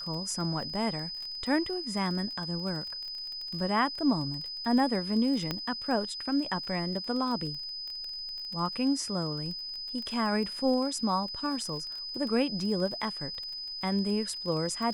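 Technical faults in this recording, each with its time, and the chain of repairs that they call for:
crackle 33/s -36 dBFS
tone 5000 Hz -36 dBFS
5.51 pop -16 dBFS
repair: de-click; notch 5000 Hz, Q 30

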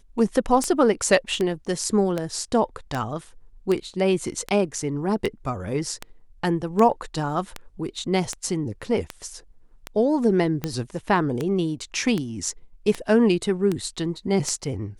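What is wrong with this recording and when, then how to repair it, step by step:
tick 78 rpm -12 dBFS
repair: de-click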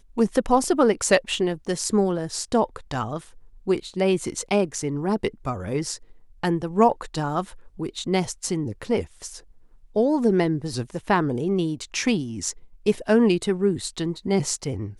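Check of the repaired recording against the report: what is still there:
none

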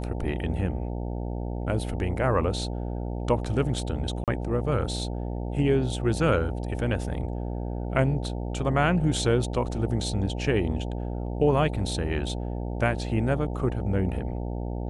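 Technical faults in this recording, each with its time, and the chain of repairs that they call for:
buzz 60 Hz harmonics 15 -31 dBFS
4.24–4.28 gap 37 ms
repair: de-hum 60 Hz, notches 15; interpolate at 4.24, 37 ms

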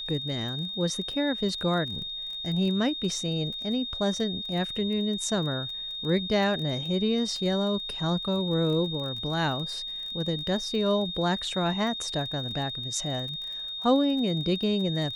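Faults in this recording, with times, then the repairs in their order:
crackle 24/s -35 dBFS
tone 3700 Hz -33 dBFS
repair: de-click; notch 3700 Hz, Q 30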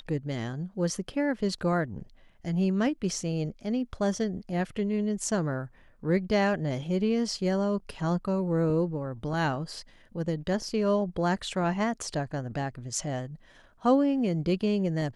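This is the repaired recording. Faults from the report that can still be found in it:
none

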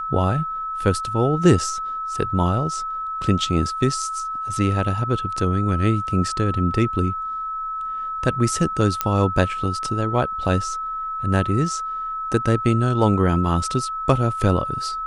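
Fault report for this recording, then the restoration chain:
tone 1300 Hz -25 dBFS
9.01 pop -5 dBFS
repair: de-click; notch 1300 Hz, Q 30

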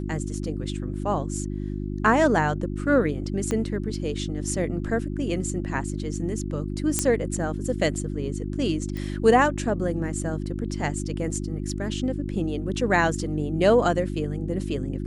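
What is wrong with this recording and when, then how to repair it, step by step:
hum 50 Hz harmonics 7 -30 dBFS
3.51 pop -14 dBFS
6.99 pop -6 dBFS
8.97 pop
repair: de-click; de-hum 50 Hz, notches 7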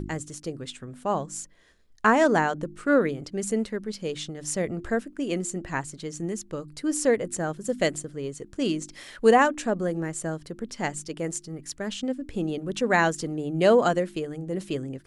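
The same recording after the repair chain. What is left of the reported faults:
3.51 pop

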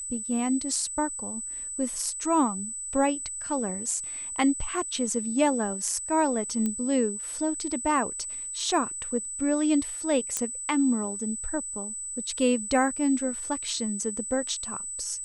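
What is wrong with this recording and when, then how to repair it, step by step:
tone 8000 Hz -33 dBFS
6.66 pop -16 dBFS
10.37 pop -12 dBFS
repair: de-click; notch 8000 Hz, Q 30

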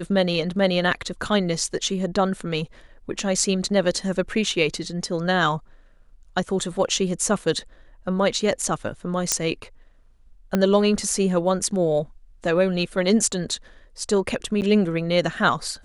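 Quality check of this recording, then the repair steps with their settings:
9.32 pop -2 dBFS
10.55 pop -8 dBFS
14.61–14.62 gap 9 ms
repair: de-click; interpolate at 14.61, 9 ms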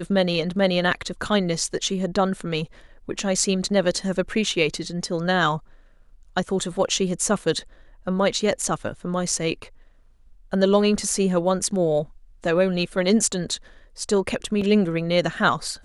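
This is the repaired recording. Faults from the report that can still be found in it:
10.55 pop

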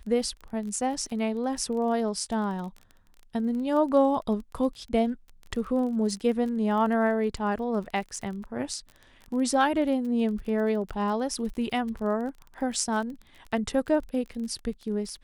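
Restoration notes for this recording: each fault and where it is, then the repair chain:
crackle 27/s -35 dBFS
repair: de-click

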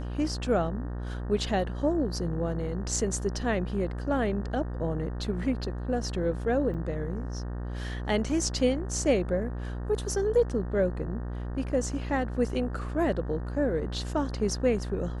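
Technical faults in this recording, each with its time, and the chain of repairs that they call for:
buzz 60 Hz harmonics 31 -34 dBFS
6.74–6.75 gap 5.6 ms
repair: de-hum 60 Hz, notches 31; interpolate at 6.74, 5.6 ms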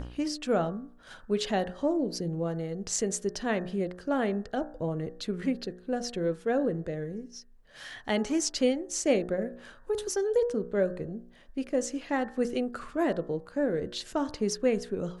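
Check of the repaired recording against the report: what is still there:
none

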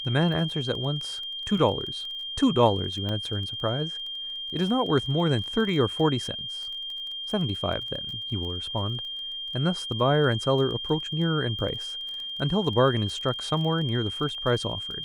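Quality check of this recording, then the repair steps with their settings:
crackle 21/s -34 dBFS
tone 3200 Hz -32 dBFS
3.09 gap 2.1 ms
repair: de-click; notch 3200 Hz, Q 30; interpolate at 3.09, 2.1 ms

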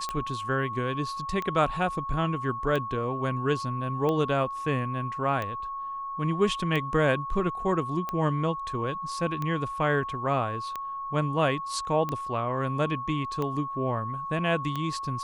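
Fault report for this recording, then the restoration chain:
tick 45 rpm -18 dBFS
tone 1100 Hz -32 dBFS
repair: de-click; notch 1100 Hz, Q 30

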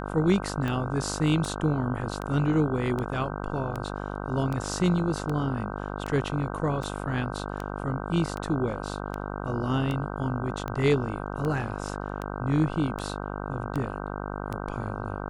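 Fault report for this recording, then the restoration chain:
buzz 50 Hz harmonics 31 -34 dBFS
tick 78 rpm -19 dBFS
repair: de-click; de-hum 50 Hz, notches 31

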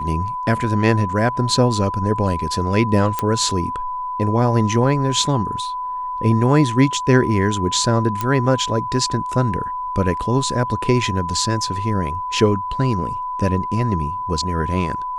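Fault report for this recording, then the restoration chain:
tone 1000 Hz -23 dBFS
3.19 pop -6 dBFS
8.21 pop -8 dBFS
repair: de-click; notch 1000 Hz, Q 30

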